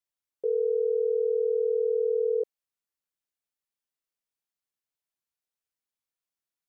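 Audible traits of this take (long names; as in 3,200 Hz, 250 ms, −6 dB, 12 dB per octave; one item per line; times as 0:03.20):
background noise floor −92 dBFS
spectral slope +2.0 dB per octave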